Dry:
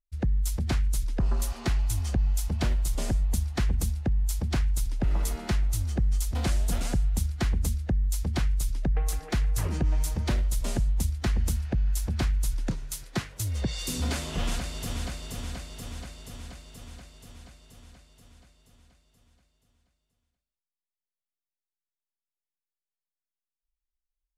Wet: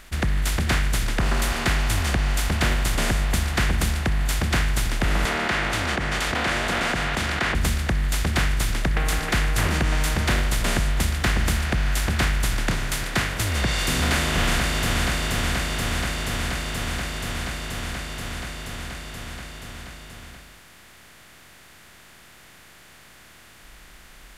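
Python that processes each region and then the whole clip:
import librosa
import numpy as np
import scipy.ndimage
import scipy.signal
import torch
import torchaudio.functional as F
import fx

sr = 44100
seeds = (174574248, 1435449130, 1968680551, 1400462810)

y = fx.chain(x, sr, fx.bandpass_edges(low_hz=440.0, high_hz=2400.0),
    fx.env_flatten(amount_pct=70), at=(5.25, 7.55))
y = fx.bin_compress(y, sr, power=0.4)
y = fx.peak_eq(y, sr, hz=1900.0, db=10.0, octaves=2.0)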